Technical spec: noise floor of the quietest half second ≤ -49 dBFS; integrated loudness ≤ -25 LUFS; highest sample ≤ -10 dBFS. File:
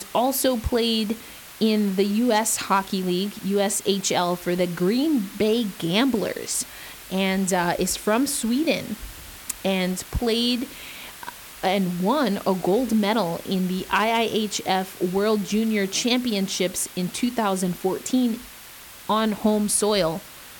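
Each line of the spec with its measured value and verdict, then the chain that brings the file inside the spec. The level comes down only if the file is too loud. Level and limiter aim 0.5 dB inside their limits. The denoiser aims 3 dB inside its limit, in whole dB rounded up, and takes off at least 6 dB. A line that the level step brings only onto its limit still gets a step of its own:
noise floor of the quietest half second -43 dBFS: fail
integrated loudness -23.0 LUFS: fail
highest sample -5.5 dBFS: fail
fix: noise reduction 7 dB, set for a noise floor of -43 dBFS; trim -2.5 dB; peak limiter -10.5 dBFS

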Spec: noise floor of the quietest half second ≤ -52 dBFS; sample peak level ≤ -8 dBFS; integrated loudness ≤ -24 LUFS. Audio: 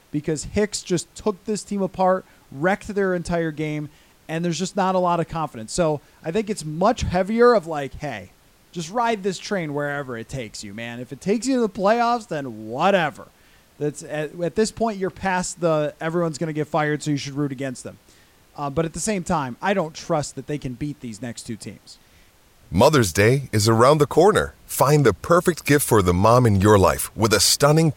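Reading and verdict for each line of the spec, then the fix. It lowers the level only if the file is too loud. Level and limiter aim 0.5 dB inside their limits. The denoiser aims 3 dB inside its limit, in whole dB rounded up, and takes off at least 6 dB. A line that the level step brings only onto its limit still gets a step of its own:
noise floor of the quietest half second -54 dBFS: pass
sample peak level -4.5 dBFS: fail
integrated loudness -21.0 LUFS: fail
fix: trim -3.5 dB; peak limiter -8.5 dBFS

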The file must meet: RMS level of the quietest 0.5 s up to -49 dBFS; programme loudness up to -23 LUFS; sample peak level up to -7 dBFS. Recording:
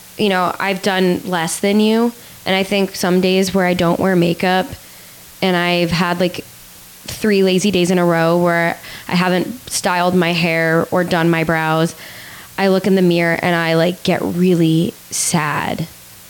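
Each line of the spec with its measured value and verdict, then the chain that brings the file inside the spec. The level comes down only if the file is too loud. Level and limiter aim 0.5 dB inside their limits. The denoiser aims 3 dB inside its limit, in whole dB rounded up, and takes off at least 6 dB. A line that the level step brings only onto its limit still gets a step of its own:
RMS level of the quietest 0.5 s -39 dBFS: fail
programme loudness -16.0 LUFS: fail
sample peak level -5.0 dBFS: fail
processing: noise reduction 6 dB, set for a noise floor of -39 dBFS; trim -7.5 dB

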